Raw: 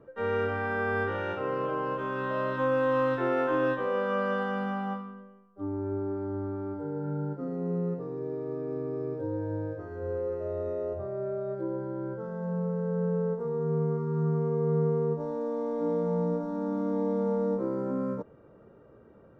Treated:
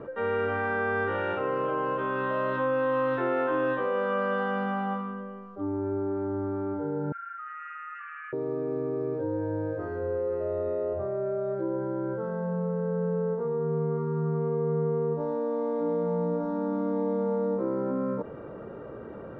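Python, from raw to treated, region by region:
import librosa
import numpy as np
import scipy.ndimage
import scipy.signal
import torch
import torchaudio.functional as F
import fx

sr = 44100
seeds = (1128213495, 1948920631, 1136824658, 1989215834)

y = fx.chain(x, sr, fx.brickwall_bandpass(low_hz=1200.0, high_hz=3100.0),
    fx.env_flatten(amount_pct=70), at=(7.12, 8.33))
y = scipy.signal.sosfilt(scipy.signal.butter(2, 3300.0, 'lowpass', fs=sr, output='sos'), y)
y = fx.low_shelf(y, sr, hz=180.0, db=-6.0)
y = fx.env_flatten(y, sr, amount_pct=50)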